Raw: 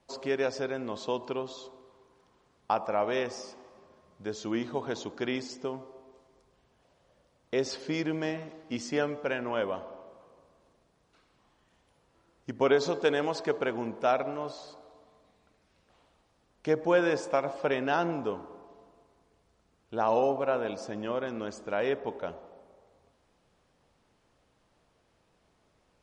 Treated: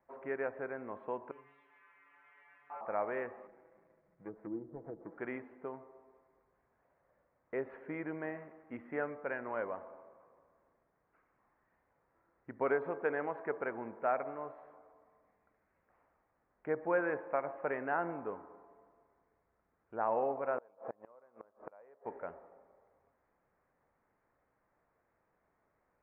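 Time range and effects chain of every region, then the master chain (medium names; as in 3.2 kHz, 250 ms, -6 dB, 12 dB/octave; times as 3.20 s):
1.31–2.81 s: zero-crossing glitches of -22.5 dBFS + peaking EQ 2.6 kHz +5.5 dB 1.4 oct + inharmonic resonator 140 Hz, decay 0.48 s, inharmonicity 0.002
3.47–5.18 s: median filter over 41 samples + comb 6.1 ms, depth 55% + low-pass that closes with the level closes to 420 Hz, closed at -30.5 dBFS
20.58–22.06 s: high-order bell 730 Hz +9.5 dB + inverted gate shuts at -21 dBFS, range -30 dB
whole clip: steep low-pass 2.1 kHz 48 dB/octave; bass shelf 430 Hz -9 dB; trim -4 dB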